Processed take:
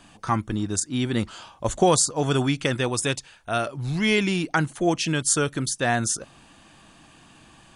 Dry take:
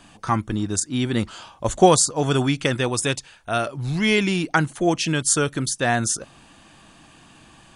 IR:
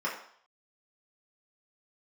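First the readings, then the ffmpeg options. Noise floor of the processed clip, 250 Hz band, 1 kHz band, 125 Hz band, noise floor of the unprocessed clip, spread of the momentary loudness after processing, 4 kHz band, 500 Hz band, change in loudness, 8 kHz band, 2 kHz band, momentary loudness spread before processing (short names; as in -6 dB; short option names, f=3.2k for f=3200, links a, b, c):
-53 dBFS, -2.5 dB, -3.5 dB, -2.0 dB, -51 dBFS, 8 LU, -2.0 dB, -3.0 dB, -2.5 dB, -2.0 dB, -2.5 dB, 9 LU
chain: -af "alimiter=level_in=5dB:limit=-1dB:release=50:level=0:latency=1,volume=-7dB"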